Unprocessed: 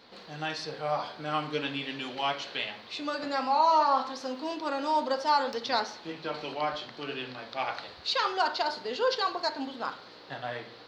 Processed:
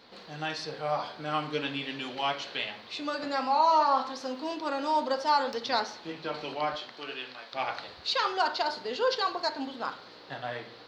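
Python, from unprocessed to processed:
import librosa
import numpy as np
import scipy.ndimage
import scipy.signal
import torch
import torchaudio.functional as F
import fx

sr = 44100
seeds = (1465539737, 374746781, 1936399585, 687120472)

y = fx.highpass(x, sr, hz=fx.line((6.75, 330.0), (7.52, 1100.0)), slope=6, at=(6.75, 7.52), fade=0.02)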